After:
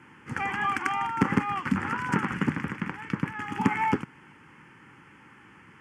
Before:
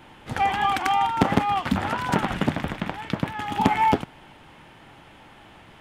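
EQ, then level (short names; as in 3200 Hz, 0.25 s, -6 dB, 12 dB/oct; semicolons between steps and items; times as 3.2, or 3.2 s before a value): BPF 130–7800 Hz; fixed phaser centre 1600 Hz, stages 4; 0.0 dB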